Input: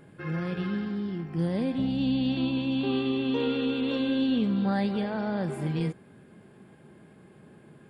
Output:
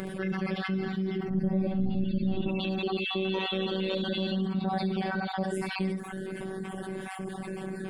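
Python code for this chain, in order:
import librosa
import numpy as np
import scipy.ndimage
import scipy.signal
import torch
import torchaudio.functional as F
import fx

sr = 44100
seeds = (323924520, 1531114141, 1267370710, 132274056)

y = fx.spec_dropout(x, sr, seeds[0], share_pct=36)
y = fx.dereverb_blind(y, sr, rt60_s=0.57)
y = fx.robotise(y, sr, hz=190.0)
y = fx.tilt_eq(y, sr, slope=-4.0, at=(1.29, 2.47), fade=0.02)
y = y + 10.0 ** (-9.5 / 20.0) * np.pad(y, (int(71 * sr / 1000.0), 0))[:len(y)]
y = fx.env_flatten(y, sr, amount_pct=70)
y = y * 10.0 ** (-5.5 / 20.0)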